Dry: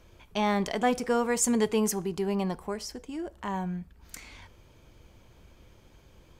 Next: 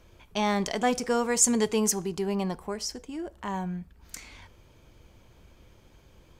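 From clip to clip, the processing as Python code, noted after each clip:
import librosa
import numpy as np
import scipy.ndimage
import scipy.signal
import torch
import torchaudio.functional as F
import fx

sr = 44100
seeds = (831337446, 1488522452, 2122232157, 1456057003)

y = fx.dynamic_eq(x, sr, hz=6200.0, q=1.0, threshold_db=-50.0, ratio=4.0, max_db=7)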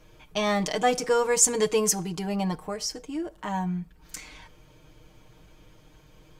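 y = x + 0.86 * np.pad(x, (int(6.5 * sr / 1000.0), 0))[:len(x)]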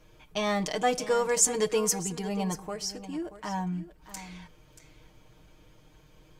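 y = x + 10.0 ** (-14.0 / 20.0) * np.pad(x, (int(632 * sr / 1000.0), 0))[:len(x)]
y = y * librosa.db_to_amplitude(-3.0)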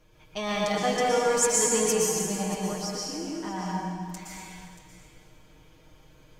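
y = fx.rev_plate(x, sr, seeds[0], rt60_s=1.7, hf_ratio=0.95, predelay_ms=105, drr_db=-4.5)
y = y * librosa.db_to_amplitude(-3.0)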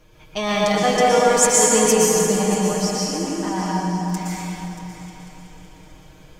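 y = fx.echo_opening(x, sr, ms=188, hz=750, octaves=1, feedback_pct=70, wet_db=-6)
y = y * librosa.db_to_amplitude(7.5)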